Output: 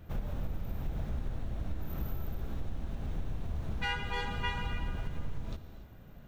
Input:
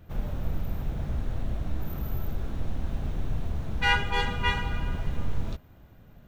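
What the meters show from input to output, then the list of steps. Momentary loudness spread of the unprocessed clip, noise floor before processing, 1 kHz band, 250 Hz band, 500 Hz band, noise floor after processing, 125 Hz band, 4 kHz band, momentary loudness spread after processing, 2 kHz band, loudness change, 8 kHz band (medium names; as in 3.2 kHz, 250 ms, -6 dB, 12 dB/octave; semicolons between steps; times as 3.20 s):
10 LU, -53 dBFS, -8.5 dB, -5.5 dB, -6.5 dB, -51 dBFS, -6.0 dB, -8.5 dB, 8 LU, -9.5 dB, -7.5 dB, -8.0 dB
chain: compression, threshold -31 dBFS, peak gain reduction 12.5 dB; gated-style reverb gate 320 ms flat, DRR 9.5 dB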